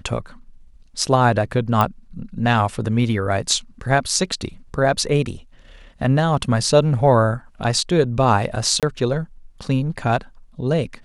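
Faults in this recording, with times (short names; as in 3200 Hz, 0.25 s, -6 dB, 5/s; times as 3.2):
1.81 pop -6 dBFS
8.8–8.83 gap 27 ms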